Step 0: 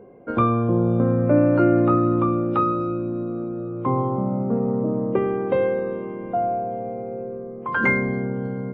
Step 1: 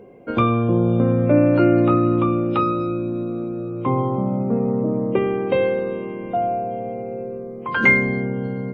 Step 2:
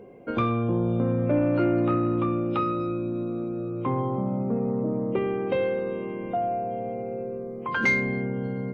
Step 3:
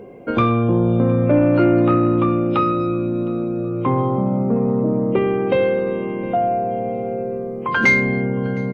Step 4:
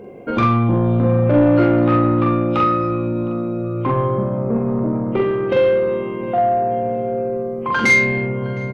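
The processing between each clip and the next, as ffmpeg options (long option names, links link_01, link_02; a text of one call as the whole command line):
ffmpeg -i in.wav -af "highshelf=frequency=2000:width_type=q:width=1.5:gain=7.5,volume=2dB" out.wav
ffmpeg -i in.wav -filter_complex "[0:a]asplit=2[link_01][link_02];[link_02]acompressor=threshold=-26dB:ratio=6,volume=-0.5dB[link_03];[link_01][link_03]amix=inputs=2:normalize=0,asoftclip=type=tanh:threshold=-5.5dB,volume=-8dB" out.wav
ffmpeg -i in.wav -af "aecho=1:1:712|1424|2136:0.0668|0.0301|0.0135,volume=8dB" out.wav
ffmpeg -i in.wav -filter_complex "[0:a]asoftclip=type=tanh:threshold=-10.5dB,asplit=2[link_01][link_02];[link_02]adelay=44,volume=-2.5dB[link_03];[link_01][link_03]amix=inputs=2:normalize=0" out.wav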